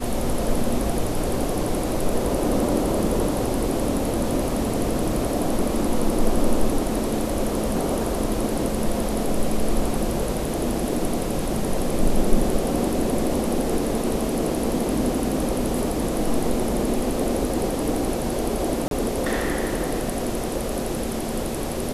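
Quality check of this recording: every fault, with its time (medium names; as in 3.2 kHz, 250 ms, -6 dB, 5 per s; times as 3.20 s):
18.88–18.91 s: dropout 32 ms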